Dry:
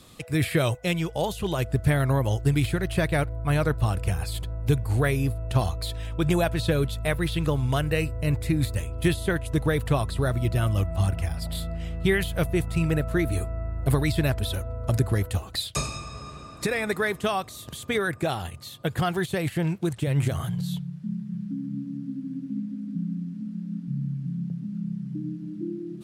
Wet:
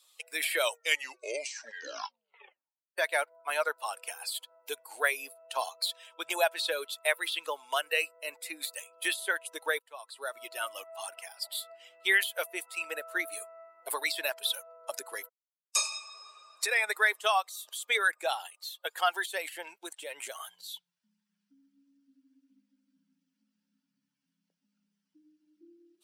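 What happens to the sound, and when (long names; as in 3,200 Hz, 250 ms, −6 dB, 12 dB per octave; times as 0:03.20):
0:00.64: tape stop 2.34 s
0:09.79–0:10.47: fade in, from −23 dB
0:15.29–0:15.74: silence
whole clip: spectral dynamics exaggerated over time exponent 1.5; Bessel high-pass filter 880 Hz, order 6; notch filter 1,200 Hz, Q 16; level +6 dB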